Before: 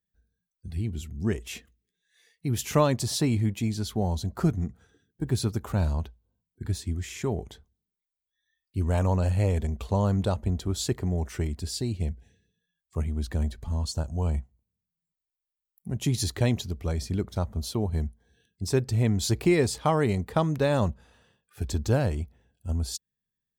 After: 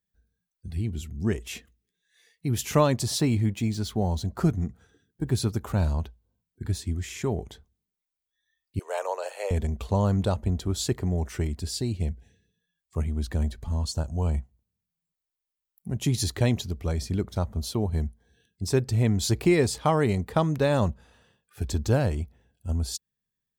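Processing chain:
0:03.18–0:04.38: running median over 3 samples
0:08.79–0:09.51: Butterworth high-pass 440 Hz 48 dB per octave
level +1 dB

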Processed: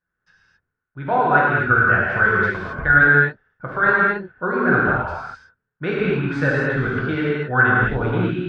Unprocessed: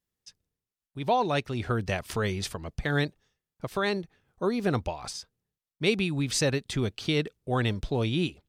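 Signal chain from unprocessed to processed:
low-pass with resonance 1,500 Hz, resonance Q 14
reverb whose tail is shaped and stops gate 290 ms flat, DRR −6 dB
level −1 dB

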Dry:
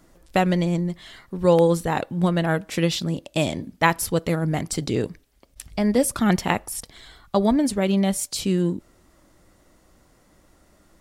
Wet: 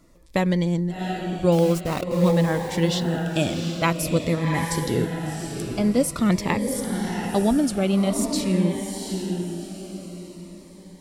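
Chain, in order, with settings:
high-shelf EQ 9,100 Hz −5 dB
0:01.52–0:02.32: centre clipping without the shift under −28 dBFS
feedback delay with all-pass diffusion 742 ms, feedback 40%, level −5 dB
phaser whose notches keep moving one way falling 0.48 Hz

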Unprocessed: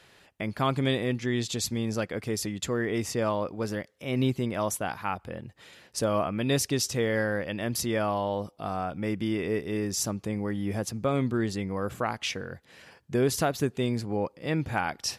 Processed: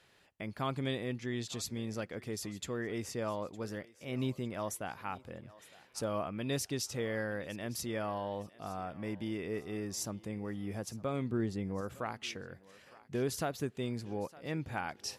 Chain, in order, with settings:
0:11.30–0:11.81: tilt shelving filter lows +4.5 dB
feedback echo with a high-pass in the loop 910 ms, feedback 38%, high-pass 400 Hz, level −19 dB
level −9 dB

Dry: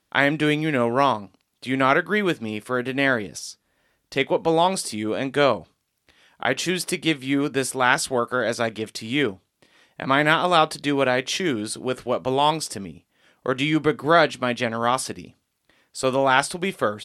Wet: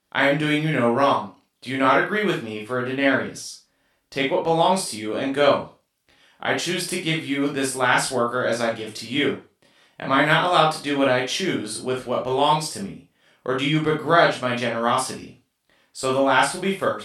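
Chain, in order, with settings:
0:02.52–0:03.29: high-shelf EQ 7,000 Hz −8 dB
convolution reverb RT60 0.30 s, pre-delay 20 ms, DRR −2 dB
level −3.5 dB

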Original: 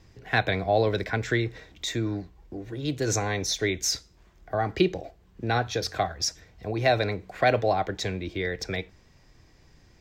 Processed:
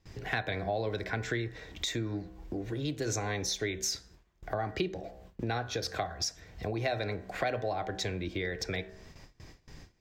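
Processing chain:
hum removal 63.8 Hz, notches 30
noise gate with hold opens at −46 dBFS
downward compressor 3 to 1, threshold −42 dBFS, peak gain reduction 18 dB
level +7 dB

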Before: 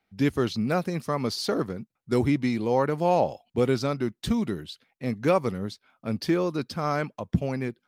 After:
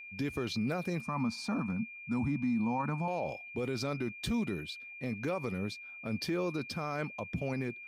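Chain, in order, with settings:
0:01.01–0:03.08: drawn EQ curve 130 Hz 0 dB, 230 Hz +9 dB, 400 Hz −17 dB, 920 Hz +6 dB, 2,700 Hz −13 dB, 6,100 Hz −7 dB, 8,700 Hz −5 dB, 12,000 Hz −16 dB
brickwall limiter −22.5 dBFS, peak gain reduction 11.5 dB
steady tone 2,400 Hz −42 dBFS
level −3 dB

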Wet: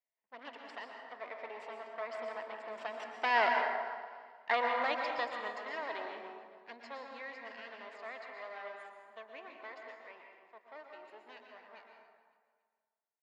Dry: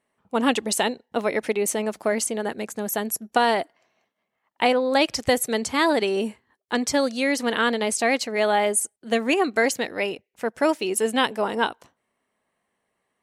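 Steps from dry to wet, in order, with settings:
lower of the sound and its delayed copy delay 0.41 ms
source passing by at 0:03.81, 13 m/s, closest 2.4 metres
loudspeaker in its box 460–4,600 Hz, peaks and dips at 660 Hz +7 dB, 1,000 Hz +9 dB, 1,900 Hz +8 dB
on a send: repeating echo 279 ms, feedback 38%, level −18 dB
on the sum: dense smooth reverb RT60 1.6 s, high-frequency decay 0.45×, pre-delay 105 ms, DRR 2 dB

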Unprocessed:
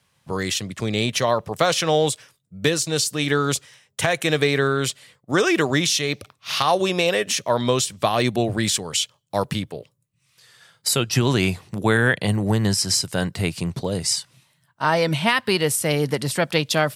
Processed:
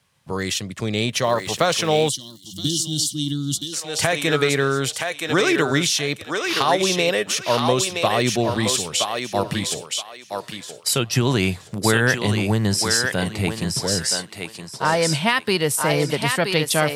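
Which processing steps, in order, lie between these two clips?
0:01.22–0:02.10: surface crackle 440 per second −33 dBFS
feedback echo with a high-pass in the loop 972 ms, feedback 26%, high-pass 480 Hz, level −3.5 dB
0:02.09–0:03.73: gain on a spectral selection 350–2,800 Hz −28 dB

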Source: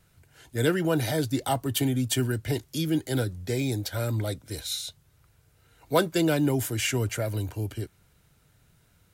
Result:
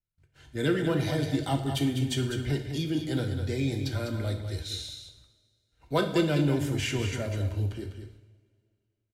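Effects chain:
parametric band 4,100 Hz +11 dB 2.9 octaves
single-tap delay 201 ms −8 dB
noise gate −52 dBFS, range −31 dB
spectral tilt −3 dB per octave
coupled-rooms reverb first 0.67 s, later 2.4 s, from −20 dB, DRR 4.5 dB
level −9 dB

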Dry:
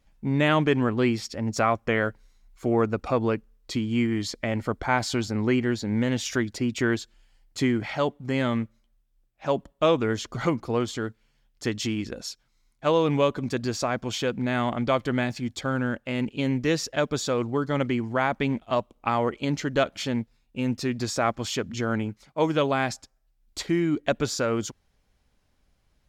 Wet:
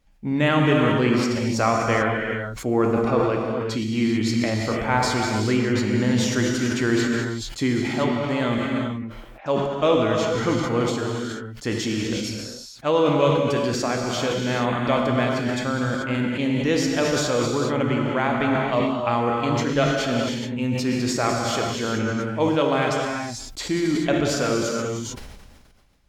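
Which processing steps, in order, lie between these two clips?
0:08.58–0:09.46: three-way crossover with the lows and the highs turned down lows −17 dB, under 290 Hz, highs −19 dB, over 2,600 Hz
reverb whose tail is shaped and stops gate 460 ms flat, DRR −0.5 dB
level that may fall only so fast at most 35 dB per second

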